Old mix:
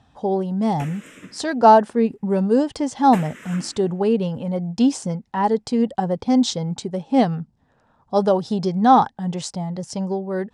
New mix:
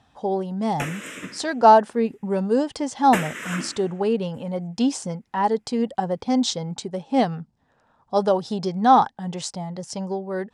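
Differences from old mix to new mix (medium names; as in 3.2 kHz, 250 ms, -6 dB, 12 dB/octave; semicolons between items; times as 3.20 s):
background +9.0 dB; master: add bass shelf 350 Hz -6.5 dB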